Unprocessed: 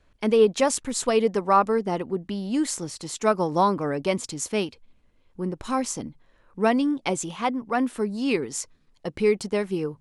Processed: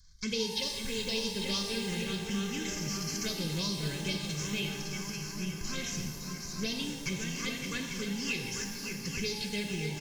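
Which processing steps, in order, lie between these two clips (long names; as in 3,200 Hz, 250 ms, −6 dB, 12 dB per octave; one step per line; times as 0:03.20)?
variable-slope delta modulation 32 kbit/s
high-shelf EQ 3,600 Hz +6 dB
comb filter 1.9 ms, depth 60%
on a send: echo machine with several playback heads 281 ms, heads second and third, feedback 55%, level −9 dB
on the sum: phaser swept by the level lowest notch 470 Hz, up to 1,800 Hz, full sweep at −14 dBFS
drawn EQ curve 180 Hz 0 dB, 840 Hz −25 dB, 1,200 Hz −12 dB, 4,900 Hz +10 dB
downward compressor, threshold −31 dBFS, peak gain reduction 9 dB
reverb with rising layers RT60 1.5 s, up +12 semitones, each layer −8 dB, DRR 4 dB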